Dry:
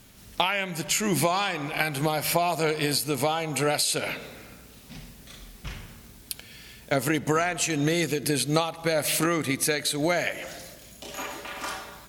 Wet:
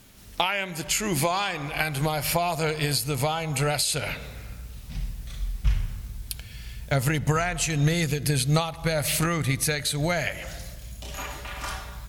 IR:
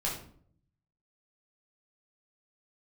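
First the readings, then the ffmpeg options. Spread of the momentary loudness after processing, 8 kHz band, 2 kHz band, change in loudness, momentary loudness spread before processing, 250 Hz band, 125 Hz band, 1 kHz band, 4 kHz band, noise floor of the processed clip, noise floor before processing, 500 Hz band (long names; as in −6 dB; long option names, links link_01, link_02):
15 LU, 0.0 dB, 0.0 dB, −0.5 dB, 19 LU, −1.0 dB, +6.5 dB, −0.5 dB, 0.0 dB, −42 dBFS, −50 dBFS, −2.0 dB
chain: -af "asubboost=boost=11.5:cutoff=89"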